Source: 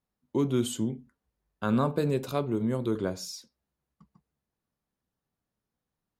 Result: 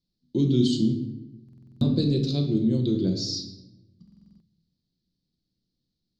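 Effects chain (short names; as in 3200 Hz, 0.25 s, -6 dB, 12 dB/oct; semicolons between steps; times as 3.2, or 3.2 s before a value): EQ curve 310 Hz 0 dB, 1100 Hz -27 dB, 2600 Hz -11 dB, 4400 Hz +12 dB, 11000 Hz -29 dB; reverb RT60 1.0 s, pre-delay 6 ms, DRR 3.5 dB; stuck buffer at 1.44/4.03, samples 2048, times 7; gain +4 dB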